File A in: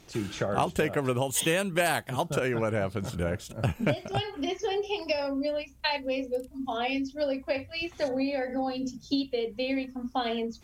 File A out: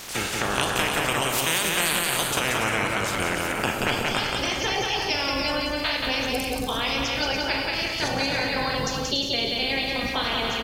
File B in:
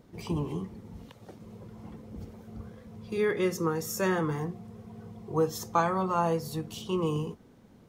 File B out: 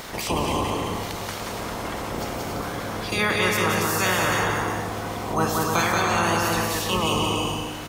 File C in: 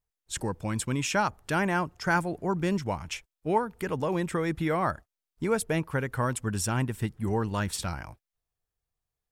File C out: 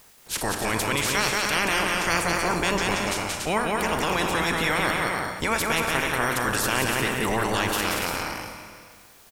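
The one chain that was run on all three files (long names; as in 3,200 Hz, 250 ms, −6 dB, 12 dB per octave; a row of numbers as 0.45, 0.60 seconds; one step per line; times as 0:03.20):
ceiling on every frequency bin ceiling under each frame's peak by 25 dB
bouncing-ball delay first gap 180 ms, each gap 0.6×, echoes 5
four-comb reverb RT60 1.1 s, combs from 29 ms, DRR 10 dB
envelope flattener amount 50%
loudness normalisation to −24 LKFS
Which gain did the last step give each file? −1.0, +2.5, 0.0 decibels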